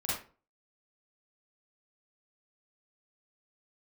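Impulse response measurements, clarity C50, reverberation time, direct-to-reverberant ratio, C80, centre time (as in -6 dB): 0.0 dB, 0.40 s, -9.0 dB, 6.5 dB, 56 ms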